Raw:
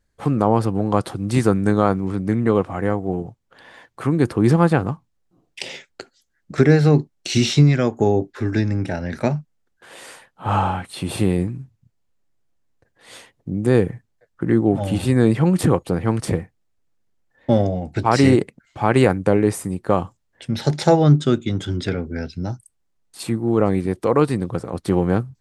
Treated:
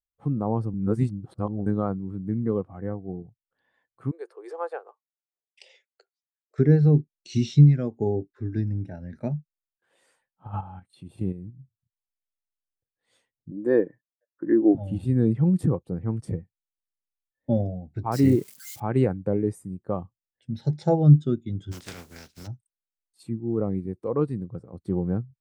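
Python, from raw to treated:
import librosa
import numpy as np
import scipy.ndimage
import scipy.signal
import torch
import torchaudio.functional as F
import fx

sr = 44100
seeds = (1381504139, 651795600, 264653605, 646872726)

y = fx.steep_highpass(x, sr, hz=410.0, slope=48, at=(4.11, 6.59))
y = fx.level_steps(y, sr, step_db=9, at=(10.47, 11.59))
y = fx.cabinet(y, sr, low_hz=260.0, low_slope=12, high_hz=8900.0, hz=(310.0, 580.0, 1000.0, 1700.0), db=(8, 10, 8, 9), at=(13.51, 14.75))
y = fx.crossing_spikes(y, sr, level_db=-14.0, at=(18.12, 18.8))
y = fx.spec_flatten(y, sr, power=0.25, at=(21.71, 22.46), fade=0.02)
y = fx.edit(y, sr, fx.reverse_span(start_s=0.74, length_s=0.92), tone=tone)
y = fx.bass_treble(y, sr, bass_db=3, treble_db=3)
y = fx.spectral_expand(y, sr, expansion=1.5)
y = y * librosa.db_to_amplitude(-5.0)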